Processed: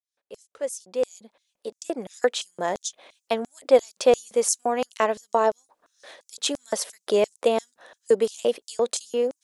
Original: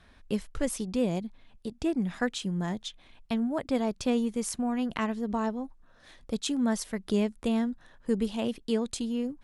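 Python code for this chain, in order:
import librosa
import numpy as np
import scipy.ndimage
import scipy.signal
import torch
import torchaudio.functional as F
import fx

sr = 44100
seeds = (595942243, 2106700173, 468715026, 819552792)

y = fx.fade_in_head(x, sr, length_s=2.74)
y = fx.filter_lfo_highpass(y, sr, shape='square', hz=2.9, low_hz=530.0, high_hz=6500.0, q=3.0)
y = y * librosa.db_to_amplitude(7.5)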